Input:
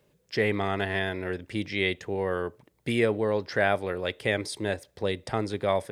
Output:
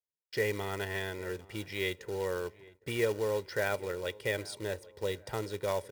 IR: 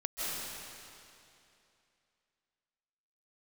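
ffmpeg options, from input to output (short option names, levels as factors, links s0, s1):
-filter_complex "[0:a]acrusher=bits=3:mode=log:mix=0:aa=0.000001,aecho=1:1:2.1:0.53,asplit=2[s0][s1];[s1]adelay=806,lowpass=f=1800:p=1,volume=0.0891,asplit=2[s2][s3];[s3]adelay=806,lowpass=f=1800:p=1,volume=0.5,asplit=2[s4][s5];[s5]adelay=806,lowpass=f=1800:p=1,volume=0.5,asplit=2[s6][s7];[s7]adelay=806,lowpass=f=1800:p=1,volume=0.5[s8];[s0][s2][s4][s6][s8]amix=inputs=5:normalize=0,agate=range=0.0158:threshold=0.00282:ratio=16:detection=peak,volume=0.398"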